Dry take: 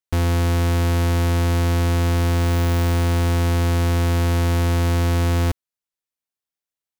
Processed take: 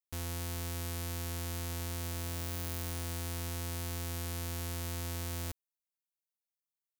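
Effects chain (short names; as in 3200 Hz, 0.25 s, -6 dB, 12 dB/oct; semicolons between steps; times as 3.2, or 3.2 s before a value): pre-emphasis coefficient 0.8; gain -7 dB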